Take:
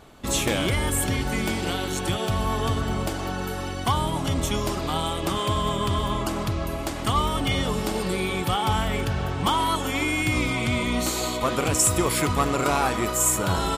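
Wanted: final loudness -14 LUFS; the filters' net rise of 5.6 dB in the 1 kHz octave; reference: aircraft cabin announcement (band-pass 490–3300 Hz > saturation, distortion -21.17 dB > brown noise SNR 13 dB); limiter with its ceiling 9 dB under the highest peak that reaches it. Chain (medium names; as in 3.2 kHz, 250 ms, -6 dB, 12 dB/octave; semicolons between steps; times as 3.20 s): peaking EQ 1 kHz +7 dB; peak limiter -14.5 dBFS; band-pass 490–3300 Hz; saturation -17.5 dBFS; brown noise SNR 13 dB; trim +14 dB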